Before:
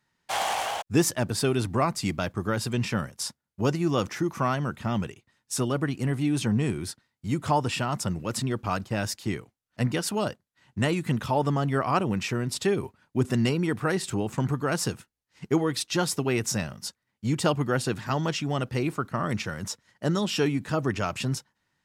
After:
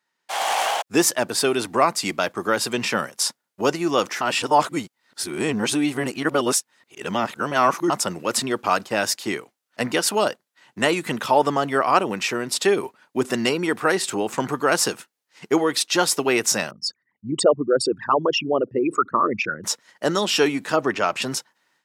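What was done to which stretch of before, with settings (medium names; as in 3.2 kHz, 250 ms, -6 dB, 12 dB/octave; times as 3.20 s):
4.21–7.90 s: reverse
16.71–19.64 s: resonances exaggerated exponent 3
20.76–21.22 s: treble shelf 5.4 kHz -10.5 dB
whole clip: level rider gain up to 11.5 dB; high-pass 370 Hz 12 dB/octave; trim -1 dB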